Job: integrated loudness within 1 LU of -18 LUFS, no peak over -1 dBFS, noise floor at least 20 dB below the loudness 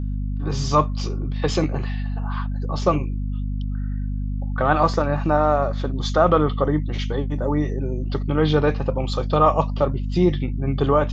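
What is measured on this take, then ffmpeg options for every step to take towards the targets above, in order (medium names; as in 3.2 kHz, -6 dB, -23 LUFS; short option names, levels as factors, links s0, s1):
hum 50 Hz; highest harmonic 250 Hz; hum level -23 dBFS; loudness -22.5 LUFS; peak level -3.0 dBFS; loudness target -18.0 LUFS
-> -af "bandreject=f=50:t=h:w=4,bandreject=f=100:t=h:w=4,bandreject=f=150:t=h:w=4,bandreject=f=200:t=h:w=4,bandreject=f=250:t=h:w=4"
-af "volume=1.68,alimiter=limit=0.891:level=0:latency=1"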